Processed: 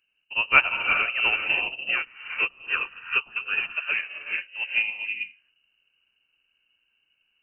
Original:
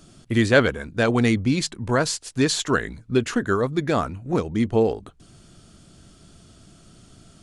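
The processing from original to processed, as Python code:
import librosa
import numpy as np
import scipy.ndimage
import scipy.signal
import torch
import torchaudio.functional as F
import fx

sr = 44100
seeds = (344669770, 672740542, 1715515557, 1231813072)

y = fx.rev_gated(x, sr, seeds[0], gate_ms=440, shape='rising', drr_db=-0.5)
y = fx.freq_invert(y, sr, carrier_hz=2900)
y = fx.upward_expand(y, sr, threshold_db=-28.0, expansion=2.5)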